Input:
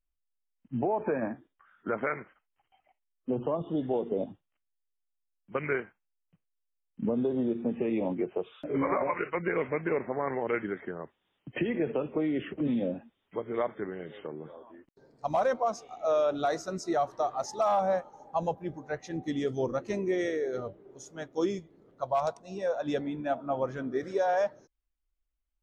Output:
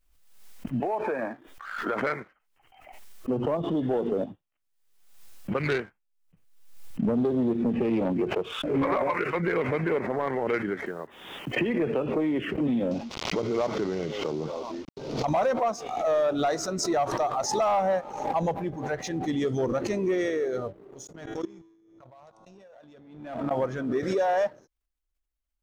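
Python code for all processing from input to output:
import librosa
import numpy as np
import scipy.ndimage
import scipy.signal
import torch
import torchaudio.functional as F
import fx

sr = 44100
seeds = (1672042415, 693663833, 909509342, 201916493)

y = fx.chain(x, sr, fx.peak_eq(hz=130.0, db=-13.5, octaves=2.5),
    fx.band_squash(depth_pct=70), at=(0.8, 2.02))
y = fx.chain(y, sr, fx.self_delay(depth_ms=0.12),
    fx.low_shelf(hz=130.0, db=8.0), at=(5.6, 8.84))
y = fx.chain(y, sr, fx.block_float(bits=7),
    fx.low_shelf(hz=150.0, db=-9.5), at=(10.86, 11.57))
y = fx.chain(y, sr, fx.cvsd(bps=32000),
    fx.peak_eq(hz=1700.0, db=-14.5, octaves=0.26),
    fx.env_flatten(amount_pct=50), at=(12.91, 15.25))
y = fx.chain(y, sr, fx.low_shelf(hz=250.0, db=5.0),
    fx.level_steps(step_db=23),
    fx.comb_fb(f0_hz=110.0, decay_s=1.8, harmonics='all', damping=0.0, mix_pct=60), at=(21.07, 23.51))
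y = fx.leveller(y, sr, passes=1)
y = fx.pre_swell(y, sr, db_per_s=57.0)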